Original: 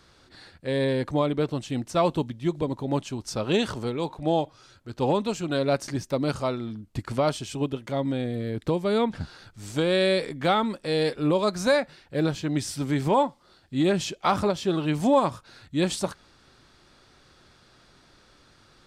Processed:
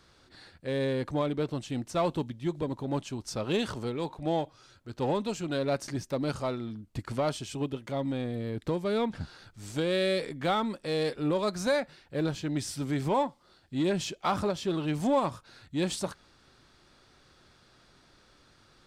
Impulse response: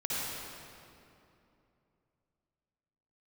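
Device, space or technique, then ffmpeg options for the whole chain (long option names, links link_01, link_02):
parallel distortion: -filter_complex "[0:a]asplit=2[link_01][link_02];[link_02]asoftclip=type=hard:threshold=-26dB,volume=-6.5dB[link_03];[link_01][link_03]amix=inputs=2:normalize=0,volume=-7dB"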